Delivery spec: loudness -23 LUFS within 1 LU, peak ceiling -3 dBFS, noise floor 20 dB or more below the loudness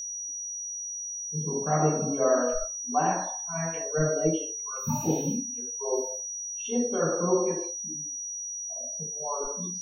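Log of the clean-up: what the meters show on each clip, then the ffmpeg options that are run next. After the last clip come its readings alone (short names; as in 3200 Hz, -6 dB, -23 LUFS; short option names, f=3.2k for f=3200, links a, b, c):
steady tone 5800 Hz; tone level -33 dBFS; loudness -28.5 LUFS; peak -11.0 dBFS; loudness target -23.0 LUFS
-> -af "bandreject=f=5.8k:w=30"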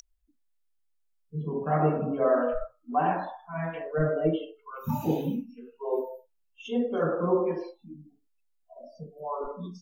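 steady tone none; loudness -29.5 LUFS; peak -12.0 dBFS; loudness target -23.0 LUFS
-> -af "volume=6.5dB"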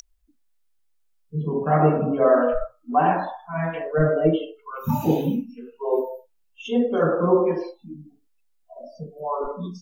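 loudness -23.0 LUFS; peak -5.5 dBFS; noise floor -65 dBFS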